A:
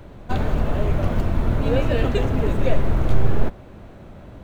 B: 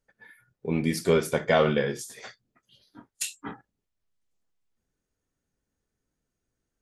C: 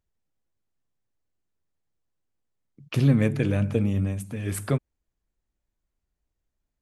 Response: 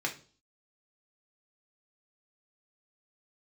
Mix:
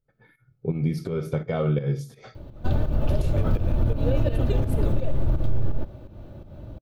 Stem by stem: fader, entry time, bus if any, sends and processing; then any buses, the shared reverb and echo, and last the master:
-1.0 dB, 2.35 s, send -21.5 dB, comb 3.4 ms, depth 43%; compression, threshold -11 dBFS, peak gain reduction 6 dB
0.0 dB, 0.00 s, send -9 dB, tilt EQ -2 dB/octave; compression 5:1, threshold -23 dBFS, peak gain reduction 9 dB; small resonant body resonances 1.3/2.2 kHz, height 13 dB
-2.0 dB, 0.15 s, no send, elliptic high-pass 420 Hz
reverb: on, RT60 0.40 s, pre-delay 3 ms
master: graphic EQ 125/250/1000/2000/8000 Hz +9/-5/-5/-11/-10 dB; volume shaper 84 bpm, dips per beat 2, -11 dB, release 205 ms; peak limiter -12.5 dBFS, peak gain reduction 5.5 dB

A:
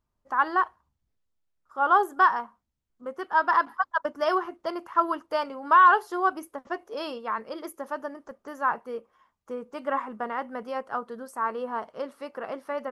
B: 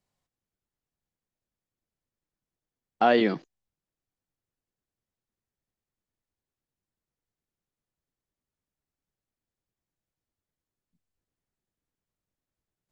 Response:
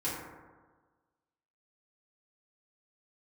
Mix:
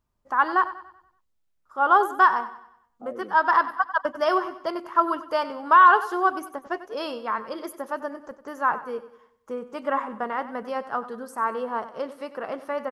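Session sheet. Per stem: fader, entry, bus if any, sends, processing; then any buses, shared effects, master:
+2.5 dB, 0.00 s, no send, echo send -14.5 dB, none
-18.0 dB, 0.00 s, no send, no echo send, Chebyshev band-pass 110–570 Hz, order 2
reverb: none
echo: feedback delay 95 ms, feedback 43%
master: none

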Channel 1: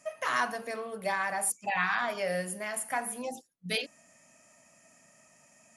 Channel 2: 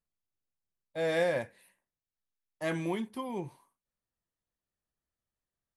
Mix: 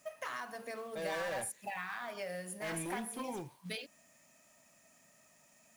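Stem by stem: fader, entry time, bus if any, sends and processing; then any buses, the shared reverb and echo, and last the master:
-5.5 dB, 0.00 s, no send, compression 12:1, threshold -32 dBFS, peak gain reduction 9.5 dB
-2.0 dB, 0.00 s, no send, bass shelf 480 Hz -4.5 dB; hard clipper -35.5 dBFS, distortion -7 dB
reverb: none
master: companded quantiser 6-bit

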